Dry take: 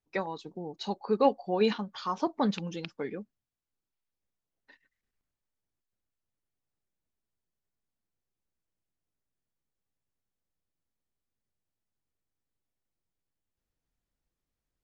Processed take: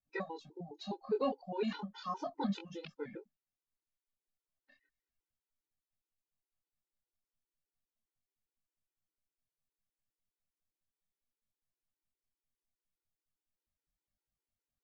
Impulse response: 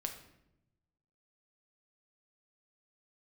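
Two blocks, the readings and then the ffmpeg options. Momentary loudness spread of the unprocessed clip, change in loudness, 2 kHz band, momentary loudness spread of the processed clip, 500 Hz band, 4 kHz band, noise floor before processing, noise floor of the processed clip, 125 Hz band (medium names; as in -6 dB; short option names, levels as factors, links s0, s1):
12 LU, -8.5 dB, -7.5 dB, 13 LU, -9.0 dB, -9.5 dB, under -85 dBFS, under -85 dBFS, -7.5 dB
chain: -af "flanger=delay=20:depth=6.4:speed=0.35,afftfilt=real='re*gt(sin(2*PI*4.9*pts/sr)*(1-2*mod(floor(b*sr/1024/260),2)),0)':imag='im*gt(sin(2*PI*4.9*pts/sr)*(1-2*mod(floor(b*sr/1024/260),2)),0)':win_size=1024:overlap=0.75,volume=0.794"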